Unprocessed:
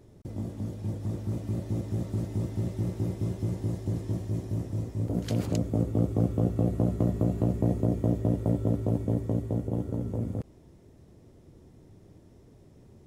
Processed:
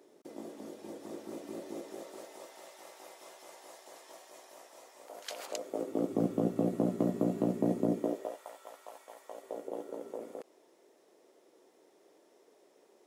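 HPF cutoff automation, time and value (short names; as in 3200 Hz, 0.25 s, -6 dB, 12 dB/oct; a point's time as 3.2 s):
HPF 24 dB/oct
1.65 s 320 Hz
2.65 s 680 Hz
5.38 s 680 Hz
6.21 s 200 Hz
7.93 s 200 Hz
8.44 s 860 Hz
9.19 s 860 Hz
9.63 s 410 Hz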